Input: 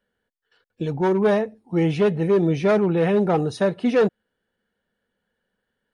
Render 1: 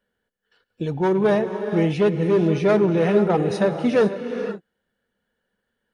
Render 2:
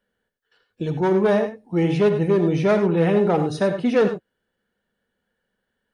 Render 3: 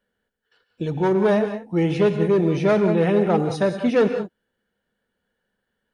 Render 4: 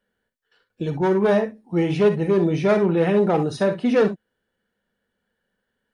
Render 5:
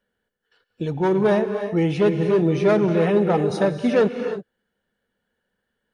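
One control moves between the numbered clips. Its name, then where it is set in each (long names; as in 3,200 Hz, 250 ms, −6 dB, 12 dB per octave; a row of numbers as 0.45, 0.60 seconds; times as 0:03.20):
reverb whose tail is shaped and stops, gate: 530, 120, 210, 80, 350 milliseconds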